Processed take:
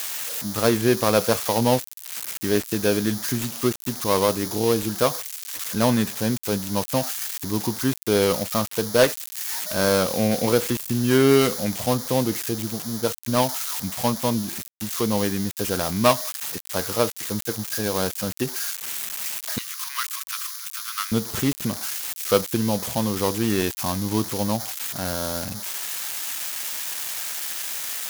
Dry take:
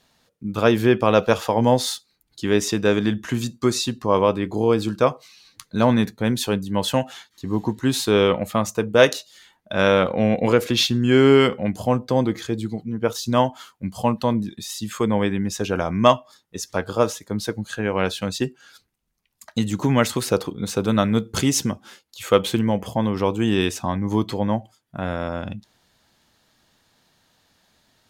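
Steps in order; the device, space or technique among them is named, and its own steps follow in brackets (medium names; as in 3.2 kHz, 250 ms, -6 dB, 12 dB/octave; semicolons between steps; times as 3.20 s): budget class-D amplifier (dead-time distortion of 0.19 ms; zero-crossing glitches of -9.5 dBFS); 19.58–21.12 s: Chebyshev high-pass 1.1 kHz, order 5; trim -2.5 dB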